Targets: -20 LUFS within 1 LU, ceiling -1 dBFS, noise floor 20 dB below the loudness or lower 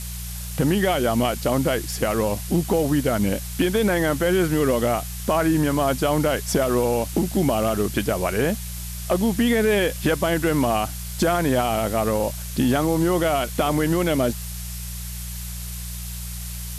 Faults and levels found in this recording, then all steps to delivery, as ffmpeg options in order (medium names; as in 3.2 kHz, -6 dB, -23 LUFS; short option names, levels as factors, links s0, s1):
hum 60 Hz; highest harmonic 180 Hz; hum level -31 dBFS; noise floor -32 dBFS; noise floor target -43 dBFS; loudness -22.5 LUFS; peak level -8.0 dBFS; loudness target -20.0 LUFS
-> -af "bandreject=f=60:t=h:w=4,bandreject=f=120:t=h:w=4,bandreject=f=180:t=h:w=4"
-af "afftdn=nr=11:nf=-32"
-af "volume=1.33"